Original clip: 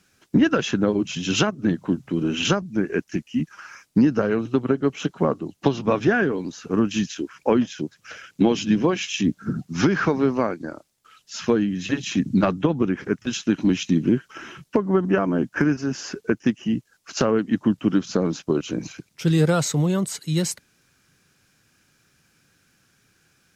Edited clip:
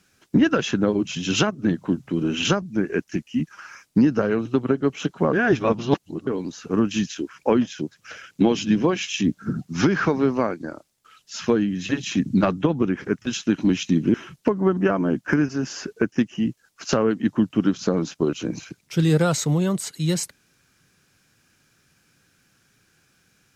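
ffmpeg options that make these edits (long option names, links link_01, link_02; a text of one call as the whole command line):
ffmpeg -i in.wav -filter_complex "[0:a]asplit=4[link_01][link_02][link_03][link_04];[link_01]atrim=end=5.332[link_05];[link_02]atrim=start=5.328:end=6.272,asetpts=PTS-STARTPTS,areverse[link_06];[link_03]atrim=start=6.268:end=14.142[link_07];[link_04]atrim=start=14.418[link_08];[link_05][link_06]acrossfade=duration=0.004:curve1=hsin:curve2=hsin[link_09];[link_09][link_07]acrossfade=duration=0.004:curve1=hsin:curve2=hsin[link_10];[link_10][link_08]acrossfade=duration=0.004:curve1=hsin:curve2=hsin" out.wav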